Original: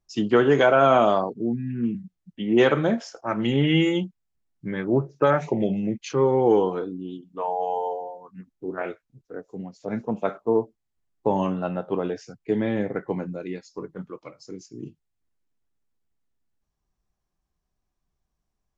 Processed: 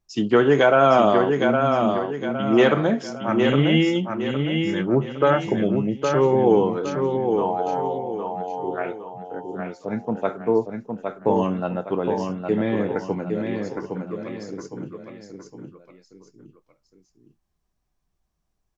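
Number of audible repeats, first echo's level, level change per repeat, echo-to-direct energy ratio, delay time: 3, −5.0 dB, −8.0 dB, −4.5 dB, 812 ms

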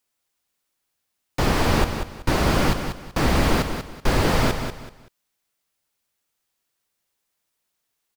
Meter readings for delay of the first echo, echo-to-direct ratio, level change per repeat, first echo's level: 190 ms, −7.5 dB, −11.0 dB, −8.0 dB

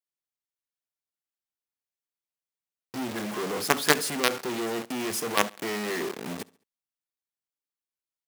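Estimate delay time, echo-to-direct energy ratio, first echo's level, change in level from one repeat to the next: 69 ms, −22.5 dB, −23.5 dB, −7.5 dB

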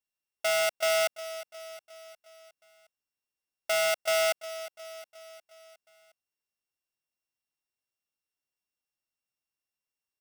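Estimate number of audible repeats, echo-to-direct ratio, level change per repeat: 4, −13.5 dB, −5.0 dB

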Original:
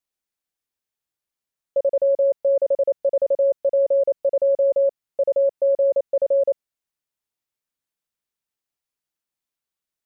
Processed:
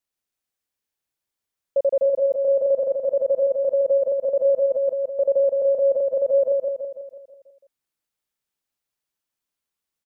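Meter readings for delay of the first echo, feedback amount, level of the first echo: 164 ms, 53%, −3.5 dB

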